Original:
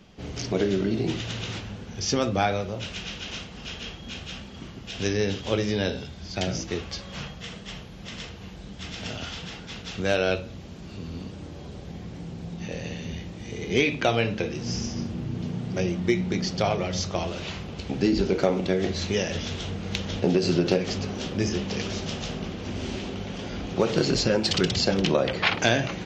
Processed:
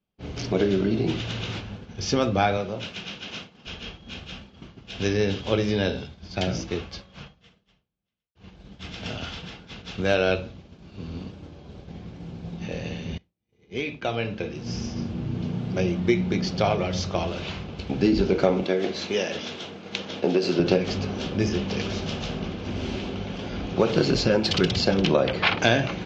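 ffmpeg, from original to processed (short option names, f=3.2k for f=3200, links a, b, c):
-filter_complex "[0:a]asettb=1/sr,asplit=3[a][b][c];[a]atrim=end=2.574[d];[b]atrim=start=2.57:end=3.67,asetpts=PTS-STARTPTS,afade=t=in:d=0.004:c=qsin,afade=t=out:st=1.096:d=0.004:c=qsin,highpass=130[e];[c]atrim=start=3.666[f];[d][e]acrossfade=d=0.004:c1=hsin:c2=qsin[g];[g][f]acrossfade=d=0.004:c1=qsin:c2=hsin,asettb=1/sr,asplit=3[h][i][j];[h]atrim=end=18.634[k];[i]atrim=start=18.63:end=20.6,asetpts=PTS-STARTPTS,afade=t=in:d=0.004:c=qsin,afade=t=out:st=1.966:d=0.004:c=qsin,highpass=260[l];[j]atrim=start=20.596[m];[k][l]acrossfade=d=0.004:c1=hsin:c2=qsin[n];[n][m]acrossfade=d=0.004:c1=qsin:c2=hsin,asplit=3[o][p][q];[o]atrim=end=8.35,asetpts=PTS-STARTPTS,afade=t=out:st=6.59:d=1.76[r];[p]atrim=start=8.35:end=13.18,asetpts=PTS-STARTPTS,afade=t=in:d=0.004:c=hsin,afade=t=out:st=4.826:d=0.004:c=hsin:silence=0.0668344[s];[q]atrim=start=13.18,asetpts=PTS-STARTPTS,afade=t=in:d=2.14:silence=0.0668344[t];[r][s][t]concat=n=3:v=0:a=1,agate=range=-33dB:threshold=-33dB:ratio=3:detection=peak,lowpass=4.7k,bandreject=f=1.9k:w=13,volume=2dB"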